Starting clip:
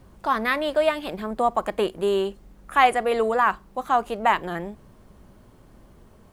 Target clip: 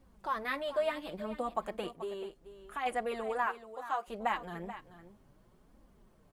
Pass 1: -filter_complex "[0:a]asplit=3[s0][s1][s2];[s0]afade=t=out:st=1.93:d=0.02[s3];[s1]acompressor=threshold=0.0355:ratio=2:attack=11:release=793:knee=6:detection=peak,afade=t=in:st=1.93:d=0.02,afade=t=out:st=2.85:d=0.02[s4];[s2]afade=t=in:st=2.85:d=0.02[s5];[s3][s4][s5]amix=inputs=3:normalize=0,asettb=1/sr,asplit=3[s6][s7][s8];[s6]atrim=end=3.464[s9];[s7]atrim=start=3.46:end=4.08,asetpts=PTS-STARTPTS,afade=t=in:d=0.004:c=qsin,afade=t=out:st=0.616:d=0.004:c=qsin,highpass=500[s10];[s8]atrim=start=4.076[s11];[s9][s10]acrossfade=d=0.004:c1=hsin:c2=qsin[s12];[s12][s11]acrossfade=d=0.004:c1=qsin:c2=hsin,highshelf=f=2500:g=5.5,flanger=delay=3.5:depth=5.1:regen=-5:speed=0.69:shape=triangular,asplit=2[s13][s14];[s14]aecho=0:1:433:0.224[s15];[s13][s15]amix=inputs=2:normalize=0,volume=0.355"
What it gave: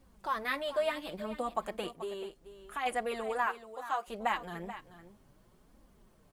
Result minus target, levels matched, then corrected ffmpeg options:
4 kHz band +2.5 dB
-filter_complex "[0:a]asplit=3[s0][s1][s2];[s0]afade=t=out:st=1.93:d=0.02[s3];[s1]acompressor=threshold=0.0355:ratio=2:attack=11:release=793:knee=6:detection=peak,afade=t=in:st=1.93:d=0.02,afade=t=out:st=2.85:d=0.02[s4];[s2]afade=t=in:st=2.85:d=0.02[s5];[s3][s4][s5]amix=inputs=3:normalize=0,asettb=1/sr,asplit=3[s6][s7][s8];[s6]atrim=end=3.464[s9];[s7]atrim=start=3.46:end=4.08,asetpts=PTS-STARTPTS,afade=t=in:d=0.004:c=qsin,afade=t=out:st=0.616:d=0.004:c=qsin,highpass=500[s10];[s8]atrim=start=4.076[s11];[s9][s10]acrossfade=d=0.004:c1=hsin:c2=qsin[s12];[s12][s11]acrossfade=d=0.004:c1=qsin:c2=hsin,flanger=delay=3.5:depth=5.1:regen=-5:speed=0.69:shape=triangular,asplit=2[s13][s14];[s14]aecho=0:1:433:0.224[s15];[s13][s15]amix=inputs=2:normalize=0,volume=0.355"

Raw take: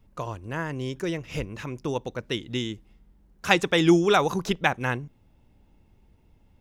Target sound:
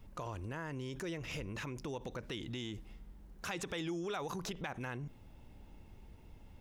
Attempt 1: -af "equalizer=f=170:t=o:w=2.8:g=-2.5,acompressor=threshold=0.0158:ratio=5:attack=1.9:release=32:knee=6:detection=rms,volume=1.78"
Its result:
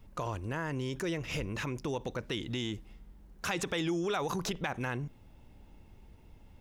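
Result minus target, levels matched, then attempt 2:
compression: peak gain reduction -7 dB
-af "equalizer=f=170:t=o:w=2.8:g=-2.5,acompressor=threshold=0.00596:ratio=5:attack=1.9:release=32:knee=6:detection=rms,volume=1.78"

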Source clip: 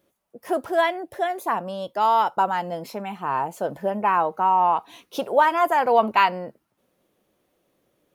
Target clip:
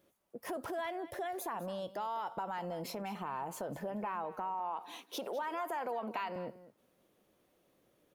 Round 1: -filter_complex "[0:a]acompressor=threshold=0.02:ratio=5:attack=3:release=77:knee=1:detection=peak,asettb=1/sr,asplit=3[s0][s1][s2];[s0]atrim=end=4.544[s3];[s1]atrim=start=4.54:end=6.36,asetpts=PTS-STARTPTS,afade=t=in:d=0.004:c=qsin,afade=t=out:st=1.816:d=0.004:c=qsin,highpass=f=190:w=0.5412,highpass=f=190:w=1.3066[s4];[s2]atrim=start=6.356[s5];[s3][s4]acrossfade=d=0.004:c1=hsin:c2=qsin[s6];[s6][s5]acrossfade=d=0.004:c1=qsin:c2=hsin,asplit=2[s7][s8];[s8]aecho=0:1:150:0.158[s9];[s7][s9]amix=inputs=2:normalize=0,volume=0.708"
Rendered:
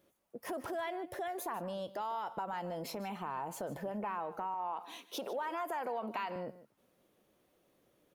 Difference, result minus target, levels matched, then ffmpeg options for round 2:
echo 54 ms early
-filter_complex "[0:a]acompressor=threshold=0.02:ratio=5:attack=3:release=77:knee=1:detection=peak,asettb=1/sr,asplit=3[s0][s1][s2];[s0]atrim=end=4.544[s3];[s1]atrim=start=4.54:end=6.36,asetpts=PTS-STARTPTS,afade=t=in:d=0.004:c=qsin,afade=t=out:st=1.816:d=0.004:c=qsin,highpass=f=190:w=0.5412,highpass=f=190:w=1.3066[s4];[s2]atrim=start=6.356[s5];[s3][s4]acrossfade=d=0.004:c1=hsin:c2=qsin[s6];[s6][s5]acrossfade=d=0.004:c1=qsin:c2=hsin,asplit=2[s7][s8];[s8]aecho=0:1:204:0.158[s9];[s7][s9]amix=inputs=2:normalize=0,volume=0.708"

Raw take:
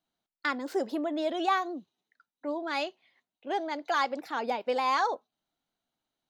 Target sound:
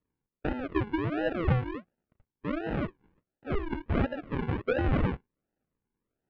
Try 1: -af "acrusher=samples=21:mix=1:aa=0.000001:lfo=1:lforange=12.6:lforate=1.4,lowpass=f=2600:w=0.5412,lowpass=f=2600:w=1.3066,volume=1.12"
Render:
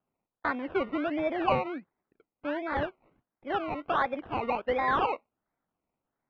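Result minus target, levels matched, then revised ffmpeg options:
decimation with a swept rate: distortion -24 dB
-af "acrusher=samples=55:mix=1:aa=0.000001:lfo=1:lforange=33:lforate=1.4,lowpass=f=2600:w=0.5412,lowpass=f=2600:w=1.3066,volume=1.12"

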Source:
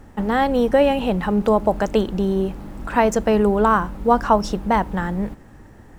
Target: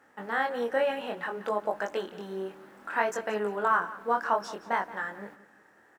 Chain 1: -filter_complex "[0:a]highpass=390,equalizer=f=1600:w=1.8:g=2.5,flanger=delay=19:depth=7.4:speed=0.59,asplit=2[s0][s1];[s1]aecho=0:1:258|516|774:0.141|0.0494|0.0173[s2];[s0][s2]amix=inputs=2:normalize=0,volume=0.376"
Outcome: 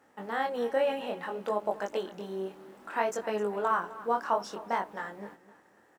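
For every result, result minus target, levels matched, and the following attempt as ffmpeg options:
echo 83 ms late; 2 kHz band -4.5 dB
-filter_complex "[0:a]highpass=390,equalizer=f=1600:w=1.8:g=2.5,flanger=delay=19:depth=7.4:speed=0.59,asplit=2[s0][s1];[s1]aecho=0:1:175|350|525:0.141|0.0494|0.0173[s2];[s0][s2]amix=inputs=2:normalize=0,volume=0.376"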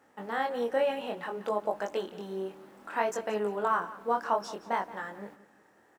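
2 kHz band -4.5 dB
-filter_complex "[0:a]highpass=390,equalizer=f=1600:w=1.8:g=9.5,flanger=delay=19:depth=7.4:speed=0.59,asplit=2[s0][s1];[s1]aecho=0:1:175|350|525:0.141|0.0494|0.0173[s2];[s0][s2]amix=inputs=2:normalize=0,volume=0.376"

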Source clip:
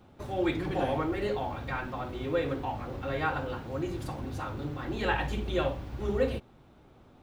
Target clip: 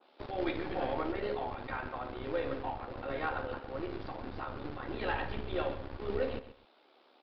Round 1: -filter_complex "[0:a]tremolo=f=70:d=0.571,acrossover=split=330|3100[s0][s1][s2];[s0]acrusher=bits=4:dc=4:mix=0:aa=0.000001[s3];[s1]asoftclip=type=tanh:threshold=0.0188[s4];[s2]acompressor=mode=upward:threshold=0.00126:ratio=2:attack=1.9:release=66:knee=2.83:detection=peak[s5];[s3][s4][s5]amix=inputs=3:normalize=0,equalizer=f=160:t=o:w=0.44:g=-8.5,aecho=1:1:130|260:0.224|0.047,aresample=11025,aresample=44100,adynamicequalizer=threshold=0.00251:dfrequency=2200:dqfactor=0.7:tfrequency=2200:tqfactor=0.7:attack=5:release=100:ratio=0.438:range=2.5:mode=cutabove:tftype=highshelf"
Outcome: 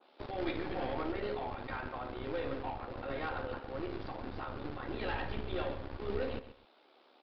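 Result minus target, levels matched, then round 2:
saturation: distortion +8 dB
-filter_complex "[0:a]tremolo=f=70:d=0.571,acrossover=split=330|3100[s0][s1][s2];[s0]acrusher=bits=4:dc=4:mix=0:aa=0.000001[s3];[s1]asoftclip=type=tanh:threshold=0.0501[s4];[s2]acompressor=mode=upward:threshold=0.00126:ratio=2:attack=1.9:release=66:knee=2.83:detection=peak[s5];[s3][s4][s5]amix=inputs=3:normalize=0,equalizer=f=160:t=o:w=0.44:g=-8.5,aecho=1:1:130|260:0.224|0.047,aresample=11025,aresample=44100,adynamicequalizer=threshold=0.00251:dfrequency=2200:dqfactor=0.7:tfrequency=2200:tqfactor=0.7:attack=5:release=100:ratio=0.438:range=2.5:mode=cutabove:tftype=highshelf"

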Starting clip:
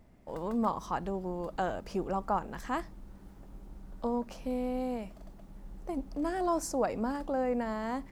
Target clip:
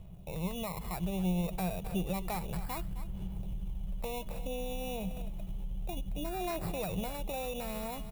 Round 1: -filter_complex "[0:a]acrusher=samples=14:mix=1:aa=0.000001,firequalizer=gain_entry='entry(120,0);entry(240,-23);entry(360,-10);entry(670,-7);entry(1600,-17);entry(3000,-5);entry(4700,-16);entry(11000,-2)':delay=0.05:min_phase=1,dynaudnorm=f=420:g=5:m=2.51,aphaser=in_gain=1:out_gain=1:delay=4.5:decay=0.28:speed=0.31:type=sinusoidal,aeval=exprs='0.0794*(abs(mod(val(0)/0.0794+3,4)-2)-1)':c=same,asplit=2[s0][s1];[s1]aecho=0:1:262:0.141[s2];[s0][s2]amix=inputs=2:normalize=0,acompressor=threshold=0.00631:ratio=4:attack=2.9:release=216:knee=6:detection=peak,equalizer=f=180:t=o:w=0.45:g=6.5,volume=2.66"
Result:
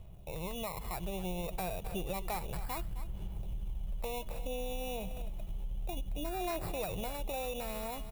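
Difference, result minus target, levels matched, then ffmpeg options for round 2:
250 Hz band -4.5 dB
-filter_complex "[0:a]acrusher=samples=14:mix=1:aa=0.000001,firequalizer=gain_entry='entry(120,0);entry(240,-23);entry(360,-10);entry(670,-7);entry(1600,-17);entry(3000,-5);entry(4700,-16);entry(11000,-2)':delay=0.05:min_phase=1,dynaudnorm=f=420:g=5:m=2.51,aphaser=in_gain=1:out_gain=1:delay=4.5:decay=0.28:speed=0.31:type=sinusoidal,aeval=exprs='0.0794*(abs(mod(val(0)/0.0794+3,4)-2)-1)':c=same,asplit=2[s0][s1];[s1]aecho=0:1:262:0.141[s2];[s0][s2]amix=inputs=2:normalize=0,acompressor=threshold=0.00631:ratio=4:attack=2.9:release=216:knee=6:detection=peak,equalizer=f=180:t=o:w=0.45:g=17,volume=2.66"

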